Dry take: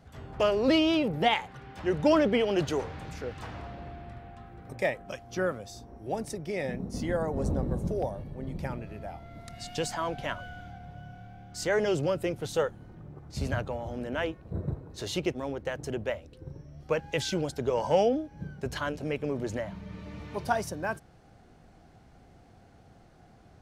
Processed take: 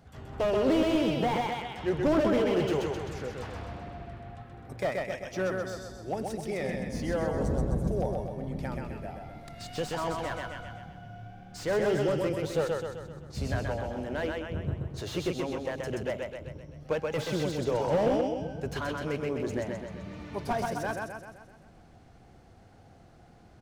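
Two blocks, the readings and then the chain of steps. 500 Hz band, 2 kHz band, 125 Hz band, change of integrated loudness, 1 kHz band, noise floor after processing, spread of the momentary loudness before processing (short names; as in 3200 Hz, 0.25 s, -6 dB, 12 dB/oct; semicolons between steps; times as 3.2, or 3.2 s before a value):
0.0 dB, -1.5 dB, +1.0 dB, -0.5 dB, -0.5 dB, -55 dBFS, 20 LU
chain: wow and flutter 29 cents; feedback echo 0.129 s, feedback 52%, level -4 dB; slew limiter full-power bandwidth 49 Hz; gain -1 dB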